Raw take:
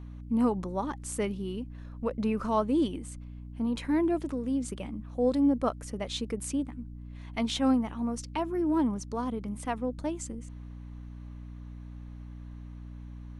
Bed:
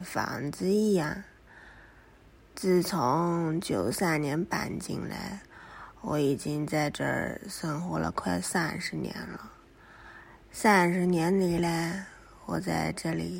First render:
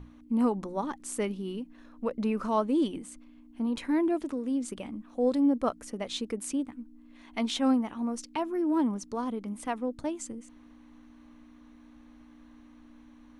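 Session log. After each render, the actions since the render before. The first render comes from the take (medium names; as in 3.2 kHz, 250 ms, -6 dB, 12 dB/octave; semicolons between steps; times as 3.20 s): hum notches 60/120/180 Hz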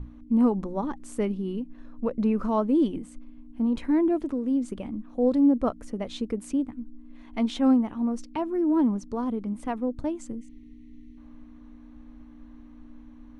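10.37–11.17 s: time-frequency box 460–1800 Hz -22 dB; tilt EQ -2.5 dB/octave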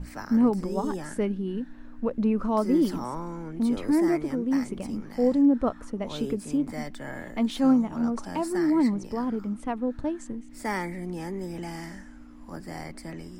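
add bed -8.5 dB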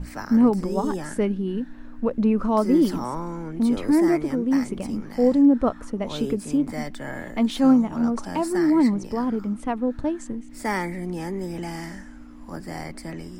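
trim +4 dB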